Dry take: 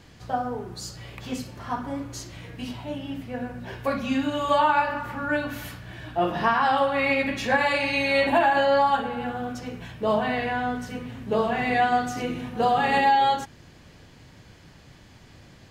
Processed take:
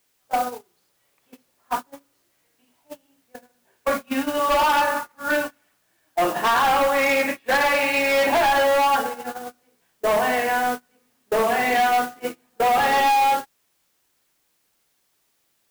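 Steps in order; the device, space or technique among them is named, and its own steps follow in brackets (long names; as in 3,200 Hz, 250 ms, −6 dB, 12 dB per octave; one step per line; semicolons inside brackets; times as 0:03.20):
aircraft radio (band-pass filter 360–2,600 Hz; hard clipping −23 dBFS, distortion −9 dB; white noise bed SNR 14 dB; noise gate −30 dBFS, range −32 dB)
level +7 dB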